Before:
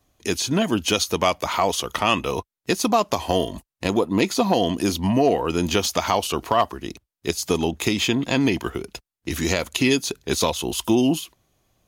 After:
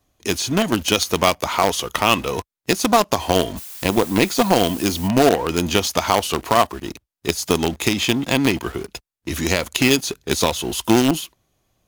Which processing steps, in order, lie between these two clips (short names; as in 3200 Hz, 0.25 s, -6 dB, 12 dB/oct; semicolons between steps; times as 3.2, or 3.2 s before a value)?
in parallel at -9 dB: companded quantiser 2-bit; 3.56–5.07 on the sum: added noise blue -35 dBFS; gain -1 dB